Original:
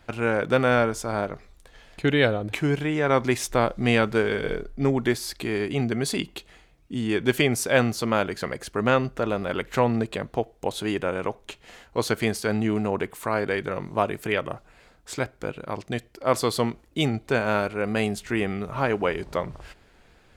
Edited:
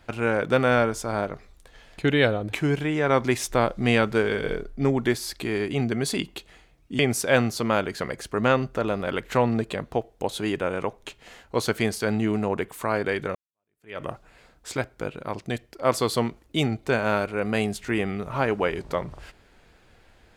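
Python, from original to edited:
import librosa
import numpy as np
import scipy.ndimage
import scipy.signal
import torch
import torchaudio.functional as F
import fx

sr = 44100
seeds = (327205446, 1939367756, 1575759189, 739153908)

y = fx.edit(x, sr, fx.cut(start_s=6.99, length_s=0.42),
    fx.fade_in_span(start_s=13.77, length_s=0.67, curve='exp'), tone=tone)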